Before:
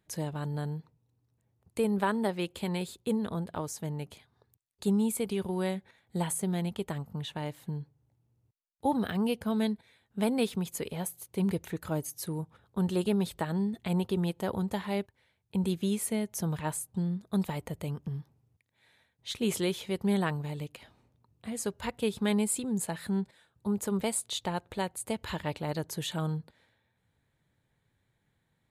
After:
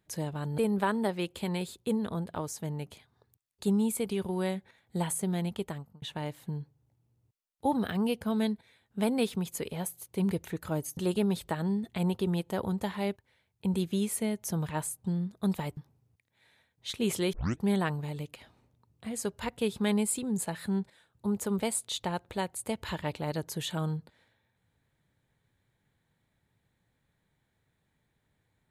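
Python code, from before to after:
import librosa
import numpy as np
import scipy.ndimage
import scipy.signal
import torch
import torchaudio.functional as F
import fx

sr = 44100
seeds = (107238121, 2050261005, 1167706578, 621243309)

y = fx.edit(x, sr, fx.cut(start_s=0.58, length_s=1.2),
    fx.fade_out_span(start_s=6.82, length_s=0.4),
    fx.cut(start_s=12.17, length_s=0.7),
    fx.cut(start_s=17.67, length_s=0.51),
    fx.tape_start(start_s=19.74, length_s=0.29), tone=tone)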